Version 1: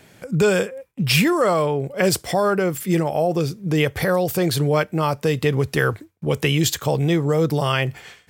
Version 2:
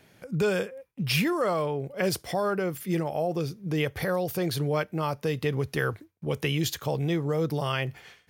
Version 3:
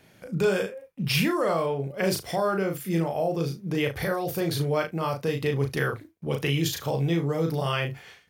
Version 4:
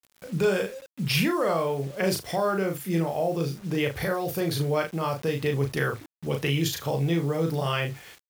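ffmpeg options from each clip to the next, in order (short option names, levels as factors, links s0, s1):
-af "equalizer=f=7700:w=7:g=-11,volume=0.398"
-af "aecho=1:1:36|73:0.631|0.133"
-af "acrusher=bits=7:mix=0:aa=0.000001"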